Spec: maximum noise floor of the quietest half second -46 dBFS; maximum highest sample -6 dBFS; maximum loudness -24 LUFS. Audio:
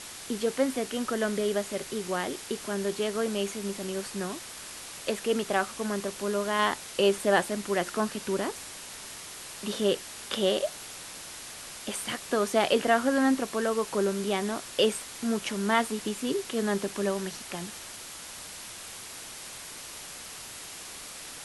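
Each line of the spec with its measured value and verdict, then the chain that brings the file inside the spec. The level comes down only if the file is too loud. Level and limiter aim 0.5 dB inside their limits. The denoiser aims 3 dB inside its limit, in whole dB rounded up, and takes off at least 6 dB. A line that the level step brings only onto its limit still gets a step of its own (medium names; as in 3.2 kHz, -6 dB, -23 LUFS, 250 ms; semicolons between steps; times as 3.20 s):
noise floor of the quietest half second -43 dBFS: fail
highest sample -9.0 dBFS: pass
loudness -30.0 LUFS: pass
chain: noise reduction 6 dB, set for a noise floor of -43 dBFS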